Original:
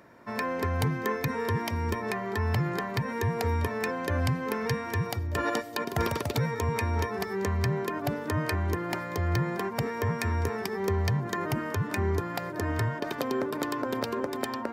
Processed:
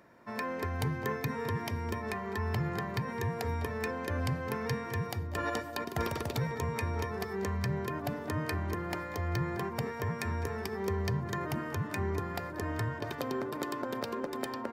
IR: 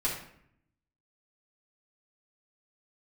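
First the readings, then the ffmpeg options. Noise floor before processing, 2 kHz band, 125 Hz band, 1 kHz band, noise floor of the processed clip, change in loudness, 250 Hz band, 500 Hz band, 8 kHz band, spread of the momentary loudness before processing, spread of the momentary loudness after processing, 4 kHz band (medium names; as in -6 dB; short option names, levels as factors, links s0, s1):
-37 dBFS, -5.0 dB, -5.0 dB, -5.0 dB, -41 dBFS, -5.0 dB, -4.5 dB, -5.0 dB, -5.0 dB, 3 LU, 3 LU, -5.0 dB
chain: -filter_complex "[0:a]asplit=2[s0][s1];[s1]adelay=210,lowpass=f=1200:p=1,volume=0.316,asplit=2[s2][s3];[s3]adelay=210,lowpass=f=1200:p=1,volume=0.47,asplit=2[s4][s5];[s5]adelay=210,lowpass=f=1200:p=1,volume=0.47,asplit=2[s6][s7];[s7]adelay=210,lowpass=f=1200:p=1,volume=0.47,asplit=2[s8][s9];[s9]adelay=210,lowpass=f=1200:p=1,volume=0.47[s10];[s0][s2][s4][s6][s8][s10]amix=inputs=6:normalize=0,asplit=2[s11][s12];[1:a]atrim=start_sample=2205[s13];[s12][s13]afir=irnorm=-1:irlink=0,volume=0.0631[s14];[s11][s14]amix=inputs=2:normalize=0,volume=0.531"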